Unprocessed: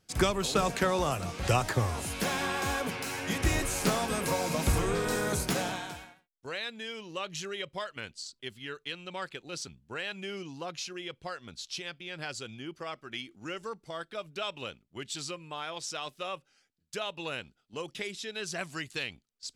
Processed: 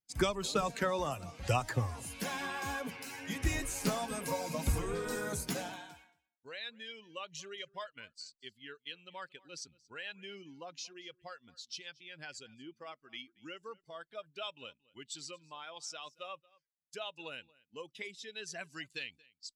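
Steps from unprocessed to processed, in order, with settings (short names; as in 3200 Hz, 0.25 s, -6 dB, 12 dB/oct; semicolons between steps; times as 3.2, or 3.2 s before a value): per-bin expansion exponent 1.5; echo 0.229 s -24 dB; gain -2.5 dB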